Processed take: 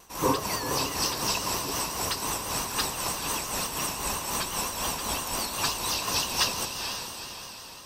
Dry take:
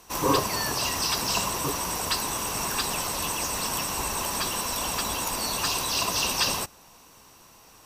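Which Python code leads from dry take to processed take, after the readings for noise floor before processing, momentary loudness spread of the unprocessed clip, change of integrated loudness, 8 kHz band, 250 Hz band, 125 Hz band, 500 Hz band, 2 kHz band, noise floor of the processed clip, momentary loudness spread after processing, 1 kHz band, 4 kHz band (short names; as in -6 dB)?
-53 dBFS, 4 LU, -2.0 dB, -1.5 dB, -1.5 dB, -1.5 dB, -1.5 dB, -2.0 dB, -43 dBFS, 5 LU, -2.0 dB, -1.5 dB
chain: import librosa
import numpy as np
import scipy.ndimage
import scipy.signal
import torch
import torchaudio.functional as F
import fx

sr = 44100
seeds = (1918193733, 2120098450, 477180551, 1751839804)

p1 = x * (1.0 - 0.64 / 2.0 + 0.64 / 2.0 * np.cos(2.0 * np.pi * 3.9 * (np.arange(len(x)) / sr)))
p2 = p1 + fx.echo_diffused(p1, sr, ms=466, feedback_pct=50, wet_db=-6.5, dry=0)
y = fx.vibrato(p2, sr, rate_hz=5.8, depth_cents=69.0)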